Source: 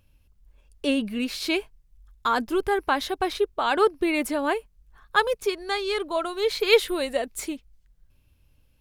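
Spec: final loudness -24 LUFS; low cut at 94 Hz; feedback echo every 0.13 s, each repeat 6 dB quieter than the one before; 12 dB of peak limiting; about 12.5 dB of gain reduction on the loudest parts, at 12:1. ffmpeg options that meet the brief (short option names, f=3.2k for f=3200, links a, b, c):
-af "highpass=94,acompressor=threshold=-24dB:ratio=12,alimiter=level_in=1.5dB:limit=-24dB:level=0:latency=1,volume=-1.5dB,aecho=1:1:130|260|390|520|650|780:0.501|0.251|0.125|0.0626|0.0313|0.0157,volume=9.5dB"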